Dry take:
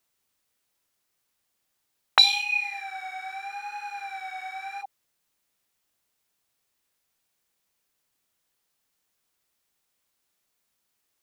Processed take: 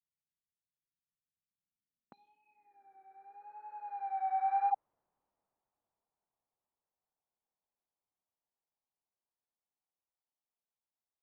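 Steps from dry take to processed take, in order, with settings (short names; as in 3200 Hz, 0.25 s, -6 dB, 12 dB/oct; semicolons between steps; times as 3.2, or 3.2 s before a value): Doppler pass-by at 4.67, 9 m/s, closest 4.7 m; low-pass sweep 160 Hz -> 860 Hz, 1.42–4.55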